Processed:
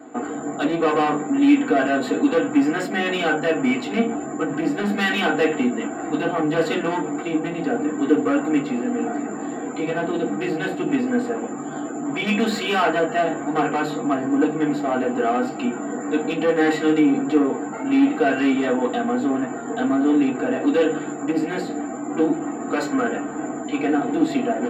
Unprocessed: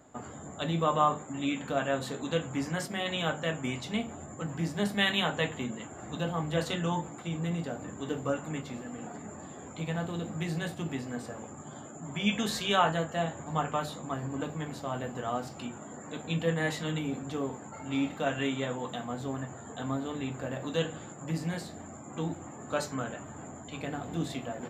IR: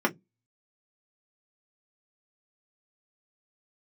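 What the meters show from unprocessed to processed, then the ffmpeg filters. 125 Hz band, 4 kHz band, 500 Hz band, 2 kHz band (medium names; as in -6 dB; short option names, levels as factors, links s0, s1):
-1.0 dB, +3.5 dB, +12.5 dB, +10.5 dB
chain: -filter_complex "[0:a]bandreject=f=1200:w=27,asoftclip=type=tanh:threshold=0.0299[s0];[1:a]atrim=start_sample=2205,asetrate=57330,aresample=44100[s1];[s0][s1]afir=irnorm=-1:irlink=0,volume=1.5"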